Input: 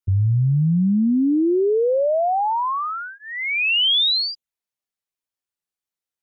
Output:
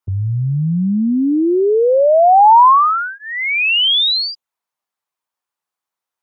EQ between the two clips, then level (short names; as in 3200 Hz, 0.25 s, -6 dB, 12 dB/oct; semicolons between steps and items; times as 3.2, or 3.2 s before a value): HPF 120 Hz 6 dB/oct; bell 990 Hz +12.5 dB 1.3 oct; +2.5 dB